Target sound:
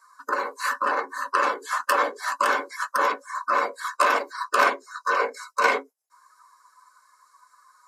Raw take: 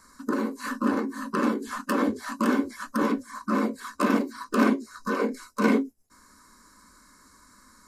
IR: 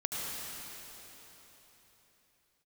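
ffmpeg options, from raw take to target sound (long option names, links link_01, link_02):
-af "highpass=frequency=590:width=0.5412,highpass=frequency=590:width=1.3066,afftdn=noise_reduction=16:noise_floor=-49,volume=8.5dB"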